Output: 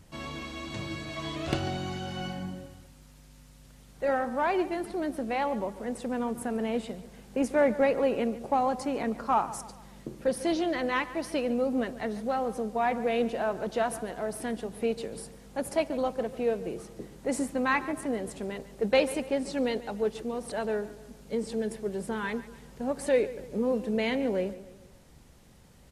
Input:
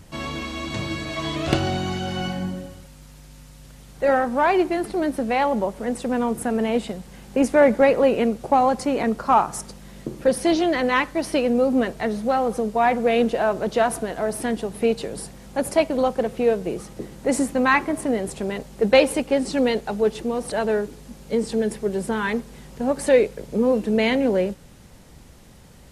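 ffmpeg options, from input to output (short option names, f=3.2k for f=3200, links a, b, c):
-filter_complex "[0:a]asplit=2[a][b];[b]adelay=144,lowpass=f=3.8k:p=1,volume=-15.5dB,asplit=2[c][d];[d]adelay=144,lowpass=f=3.8k:p=1,volume=0.45,asplit=2[e][f];[f]adelay=144,lowpass=f=3.8k:p=1,volume=0.45,asplit=2[g][h];[h]adelay=144,lowpass=f=3.8k:p=1,volume=0.45[i];[a][c][e][g][i]amix=inputs=5:normalize=0,volume=-8.5dB"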